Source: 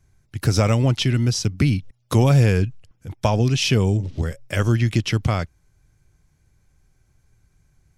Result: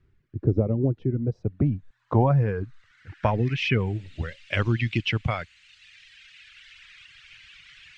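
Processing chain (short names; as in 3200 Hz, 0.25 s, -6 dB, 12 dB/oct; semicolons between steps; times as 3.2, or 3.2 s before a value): band noise 1500–8600 Hz -43 dBFS; low-pass sweep 390 Hz -> 2700 Hz, 0.78–4.03; reverb removal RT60 1.9 s; gain -4 dB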